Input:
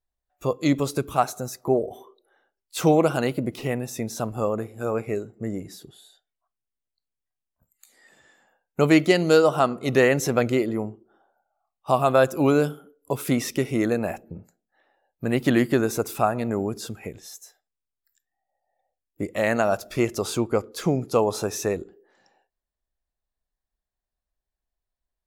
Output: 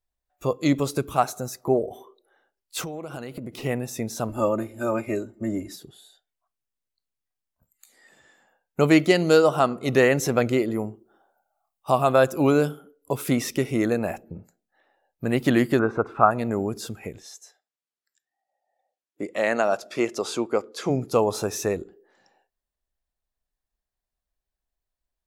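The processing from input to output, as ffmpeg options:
-filter_complex "[0:a]asettb=1/sr,asplit=3[s0][s1][s2];[s0]atrim=end=2.814[s3];[s1]atrim=start=2.81:end=3.58,asetpts=PTS-STARTPTS,afade=t=in:d=0.004:c=qsin,afade=t=out:st=0.766:d=0.004:c=qsin,acompressor=threshold=0.0316:ratio=16:attack=3.2:release=140:knee=1:detection=peak[s4];[s2]atrim=start=3.576[s5];[s3][s4]acrossfade=d=0.004:c1=hsin:c2=qsin[s6];[s6][s5]acrossfade=d=0.004:c1=qsin:c2=hsin,asettb=1/sr,asplit=3[s7][s8][s9];[s7]atrim=end=4.294[s10];[s8]atrim=start=4.29:end=5.76,asetpts=PTS-STARTPTS,afade=t=in:d=0.004:c=qsin,afade=t=out:st=1.466:d=0.004:c=qsin,aecho=1:1:3.3:0.93,atrim=end_sample=64827[s11];[s9]atrim=start=5.756[s12];[s10][s11]acrossfade=d=0.004:c1=hsin:c2=qsin[s13];[s13][s12]acrossfade=d=0.004:c1=qsin:c2=hsin,asettb=1/sr,asplit=3[s14][s15][s16];[s14]atrim=end=10.704[s17];[s15]atrim=start=10.7:end=11.9,asetpts=PTS-STARTPTS,afade=t=in:d=0.004:c=qsin,afade=t=out:st=1.196:d=0.004:c=qsin,highshelf=f=7700:g=10[s18];[s16]atrim=start=11.896[s19];[s17][s18]acrossfade=d=0.004:c1=hsin:c2=qsin[s20];[s20][s19]acrossfade=d=0.004:c1=qsin:c2=hsin,asettb=1/sr,asplit=3[s21][s22][s23];[s21]atrim=end=15.794[s24];[s22]atrim=start=15.79:end=16.31,asetpts=PTS-STARTPTS,afade=t=in:d=0.004:c=qsin,afade=t=out:st=0.516:d=0.004:c=qsin,lowpass=f=1300:t=q:w=2.6[s25];[s23]atrim=start=16.306[s26];[s24][s25]acrossfade=d=0.004:c1=hsin:c2=qsin[s27];[s27][s26]acrossfade=d=0.004:c1=qsin:c2=hsin,asplit=3[s28][s29][s30];[s28]afade=t=out:st=17.22:d=0.02[s31];[s29]highpass=260,lowpass=7900,afade=t=in:st=17.22:d=0.02,afade=t=out:st=20.89:d=0.02[s32];[s30]afade=t=in:st=20.89:d=0.02[s33];[s31][s32][s33]amix=inputs=3:normalize=0"

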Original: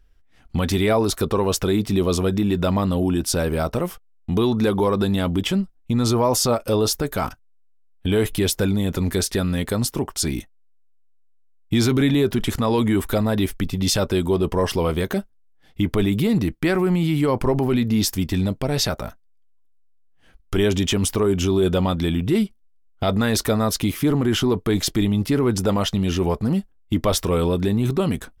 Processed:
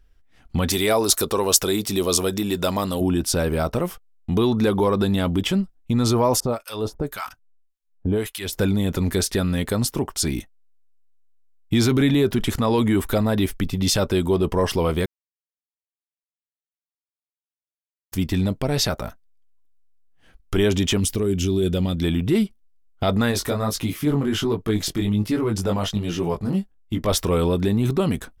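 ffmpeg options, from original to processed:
-filter_complex "[0:a]asettb=1/sr,asplit=3[s0][s1][s2];[s0]atrim=end=0.704[s3];[s1]atrim=start=0.7:end=3.01,asetpts=PTS-STARTPTS,afade=t=in:d=0.004:c=qsin,afade=t=out:st=2.306:d=0.004:c=qsin,bass=f=250:g=-8,treble=f=4000:g=11[s4];[s2]atrim=start=3.006[s5];[s3][s4]acrossfade=d=0.004:c1=hsin:c2=qsin[s6];[s6][s5]acrossfade=d=0.004:c1=qsin:c2=hsin,asettb=1/sr,asplit=3[s7][s8][s9];[s7]atrim=end=6.404[s10];[s8]atrim=start=6.4:end=8.53,asetpts=PTS-STARTPTS,afade=t=in:d=0.004:c=qsin,afade=t=out:st=2.126:d=0.004:c=qsin,acrossover=split=1000[s11][s12];[s11]aeval=exprs='val(0)*(1-1/2+1/2*cos(2*PI*1.8*n/s))':c=same[s13];[s12]aeval=exprs='val(0)*(1-1/2-1/2*cos(2*PI*1.8*n/s))':c=same[s14];[s13][s14]amix=inputs=2:normalize=0[s15];[s9]atrim=start=8.526[s16];[s10][s15]acrossfade=d=0.004:c1=hsin:c2=qsin[s17];[s17][s16]acrossfade=d=0.004:c1=qsin:c2=hsin,asettb=1/sr,asplit=3[s18][s19][s20];[s18]atrim=end=21.004[s21];[s19]atrim=start=21:end=22.02,asetpts=PTS-STARTPTS,afade=t=in:d=0.004:c=qsin,afade=t=out:st=1.016:d=0.004:c=qsin,equalizer=f=990:w=0.89:g=-14[s22];[s20]atrim=start=22.016[s23];[s21][s22]acrossfade=d=0.004:c1=hsin:c2=qsin[s24];[s24][s23]acrossfade=d=0.004:c1=qsin:c2=hsin,asplit=3[s25][s26][s27];[s25]afade=t=out:st=23.31:d=0.02[s28];[s26]flanger=delay=17.5:depth=3.8:speed=1.3,afade=t=in:st=23.31:d=0.02,afade=t=out:st=27.08:d=0.02[s29];[s27]afade=t=in:st=27.08:d=0.02[s30];[s28][s29][s30]amix=inputs=3:normalize=0,asplit=3[s31][s32][s33];[s31]atrim=end=15.06,asetpts=PTS-STARTPTS,afade=t=out:st=15.056:d=0.004:c=hsin[s34];[s32]atrim=start=15.06:end=18.12,asetpts=PTS-STARTPTS,volume=0[s35];[s33]atrim=start=18.12,asetpts=PTS-STARTPTS,afade=t=in:d=0.004:c=hsin[s36];[s34][s35][s36]concat=n=3:v=0:a=1"

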